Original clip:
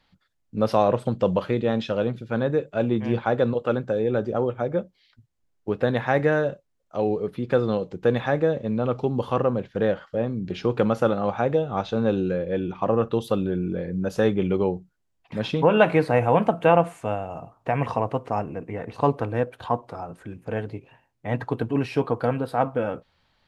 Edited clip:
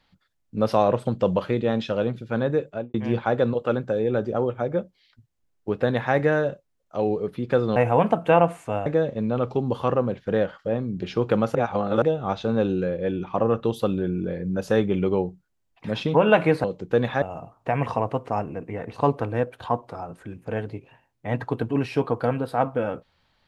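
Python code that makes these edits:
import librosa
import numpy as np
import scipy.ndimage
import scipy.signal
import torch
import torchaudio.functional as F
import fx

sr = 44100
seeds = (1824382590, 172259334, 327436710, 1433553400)

y = fx.studio_fade_out(x, sr, start_s=2.65, length_s=0.29)
y = fx.edit(y, sr, fx.swap(start_s=7.76, length_s=0.58, other_s=16.12, other_length_s=1.1),
    fx.reverse_span(start_s=11.03, length_s=0.47), tone=tone)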